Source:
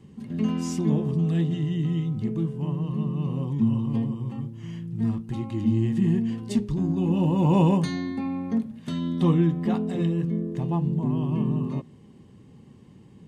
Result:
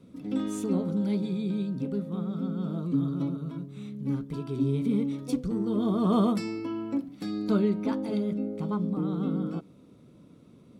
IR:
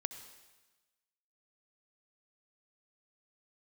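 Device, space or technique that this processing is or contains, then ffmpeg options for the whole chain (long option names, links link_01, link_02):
nightcore: -af "asetrate=54243,aresample=44100,volume=-4dB"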